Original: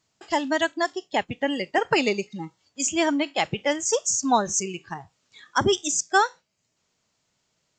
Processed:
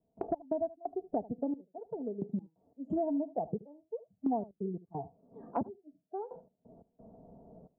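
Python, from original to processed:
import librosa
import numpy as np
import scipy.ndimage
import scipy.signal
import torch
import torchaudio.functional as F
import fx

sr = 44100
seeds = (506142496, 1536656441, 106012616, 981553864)

y = scipy.signal.sosfilt(scipy.signal.ellip(4, 1.0, 70, 720.0, 'lowpass', fs=sr, output='sos'), x)
y = y + 0.53 * np.pad(y, (int(4.4 * sr / 1000.0), 0))[:len(y)]
y = fx.step_gate(y, sr, bpm=88, pattern='.x.x.xxxx...', floor_db=-24.0, edge_ms=4.5)
y = y + 10.0 ** (-20.0 / 20.0) * np.pad(y, (int(75 * sr / 1000.0), 0))[:len(y)]
y = fx.band_squash(y, sr, depth_pct=100)
y = y * 10.0 ** (-6.0 / 20.0)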